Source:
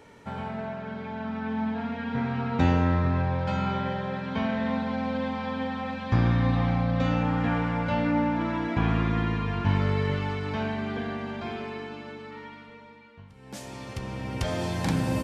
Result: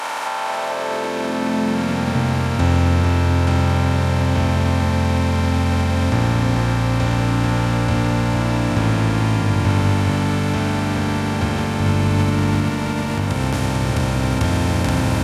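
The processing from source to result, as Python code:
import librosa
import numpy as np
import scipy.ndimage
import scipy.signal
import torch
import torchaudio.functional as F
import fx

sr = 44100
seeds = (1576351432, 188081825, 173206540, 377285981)

y = fx.bin_compress(x, sr, power=0.2)
y = fx.recorder_agc(y, sr, target_db=-12.0, rise_db_per_s=65.0, max_gain_db=30)
y = fx.high_shelf(y, sr, hz=5000.0, db=7.5)
y = fx.filter_sweep_highpass(y, sr, from_hz=870.0, to_hz=76.0, start_s=0.39, end_s=2.54, q=2.0)
y = fx.low_shelf(y, sr, hz=170.0, db=7.5, at=(11.8, 12.69))
y = y + 10.0 ** (-8.5 / 20.0) * np.pad(y, (int(446 * sr / 1000.0), 0))[:len(y)]
y = F.gain(torch.from_numpy(y), -2.5).numpy()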